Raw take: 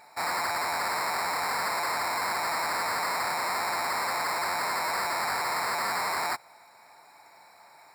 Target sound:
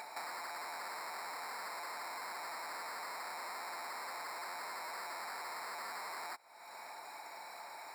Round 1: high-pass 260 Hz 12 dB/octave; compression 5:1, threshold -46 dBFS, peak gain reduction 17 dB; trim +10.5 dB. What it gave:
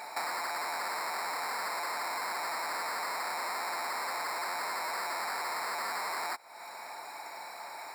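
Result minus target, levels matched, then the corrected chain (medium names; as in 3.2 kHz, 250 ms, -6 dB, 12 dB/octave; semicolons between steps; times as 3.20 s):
compression: peak gain reduction -9 dB
high-pass 260 Hz 12 dB/octave; compression 5:1, threshold -57 dBFS, peak gain reduction 25.5 dB; trim +10.5 dB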